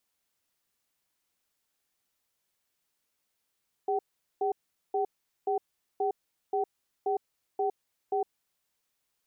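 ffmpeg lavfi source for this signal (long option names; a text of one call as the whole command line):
ffmpeg -f lavfi -i "aevalsrc='0.0398*(sin(2*PI*405*t)+sin(2*PI*763*t))*clip(min(mod(t,0.53),0.11-mod(t,0.53))/0.005,0,1)':duration=4.62:sample_rate=44100" out.wav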